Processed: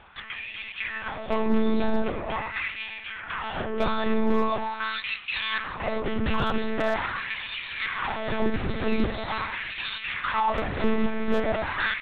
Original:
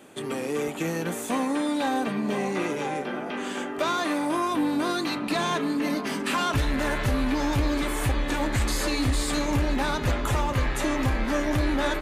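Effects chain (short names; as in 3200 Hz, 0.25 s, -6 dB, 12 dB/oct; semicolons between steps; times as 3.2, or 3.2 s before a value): LFO high-pass sine 0.43 Hz 220–2700 Hz; monotone LPC vocoder at 8 kHz 220 Hz; overloaded stage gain 13.5 dB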